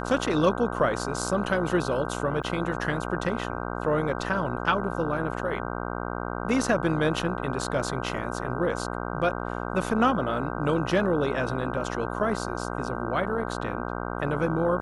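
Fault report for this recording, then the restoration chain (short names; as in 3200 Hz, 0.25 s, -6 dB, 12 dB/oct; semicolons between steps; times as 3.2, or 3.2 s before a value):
buzz 60 Hz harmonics 26 -32 dBFS
2.43–2.44 gap 6.6 ms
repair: de-hum 60 Hz, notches 26; interpolate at 2.43, 6.6 ms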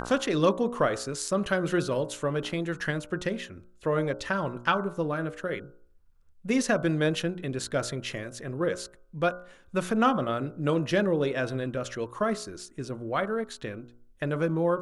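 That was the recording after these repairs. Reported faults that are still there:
none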